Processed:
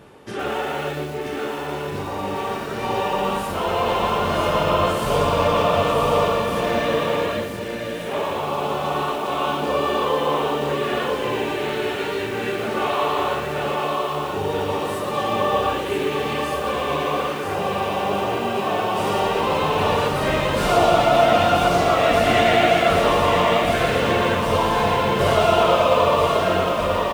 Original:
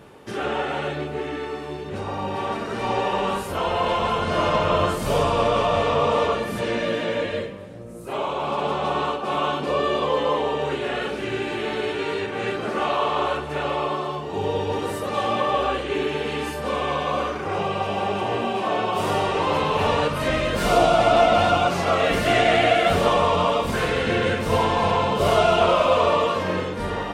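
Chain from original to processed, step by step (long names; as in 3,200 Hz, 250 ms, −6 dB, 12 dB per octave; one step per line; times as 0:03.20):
single-tap delay 982 ms −5 dB
0:01.47–0:02.16: steady tone 1,000 Hz −41 dBFS
feedback echo at a low word length 116 ms, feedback 35%, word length 6 bits, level −7 dB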